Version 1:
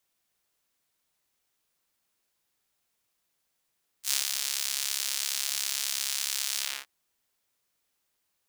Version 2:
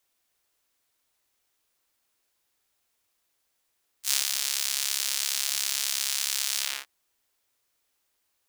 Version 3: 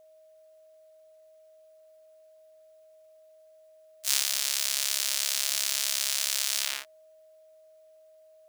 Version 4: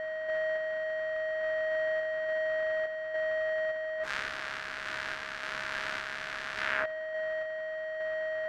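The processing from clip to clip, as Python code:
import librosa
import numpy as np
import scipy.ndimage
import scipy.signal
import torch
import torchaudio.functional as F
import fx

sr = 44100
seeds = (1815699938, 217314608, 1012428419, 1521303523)

y1 = fx.peak_eq(x, sr, hz=170.0, db=-12.0, octaves=0.44)
y1 = F.gain(torch.from_numpy(y1), 2.5).numpy()
y2 = y1 + 10.0 ** (-54.0 / 20.0) * np.sin(2.0 * np.pi * 630.0 * np.arange(len(y1)) / sr)
y3 = y2 + 0.5 * 10.0 ** (-26.0 / 20.0) * np.sign(y2)
y3 = fx.lowpass_res(y3, sr, hz=1600.0, q=3.3)
y3 = fx.tremolo_random(y3, sr, seeds[0], hz=3.5, depth_pct=55)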